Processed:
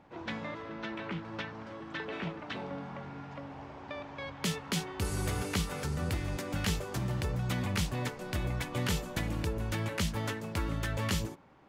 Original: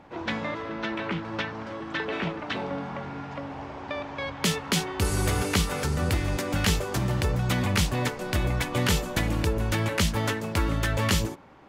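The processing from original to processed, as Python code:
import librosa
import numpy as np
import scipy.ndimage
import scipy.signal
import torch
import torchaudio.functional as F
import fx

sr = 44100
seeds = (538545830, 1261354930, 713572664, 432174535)

y = fx.peak_eq(x, sr, hz=150.0, db=3.0, octaves=0.89)
y = y * 10.0 ** (-8.5 / 20.0)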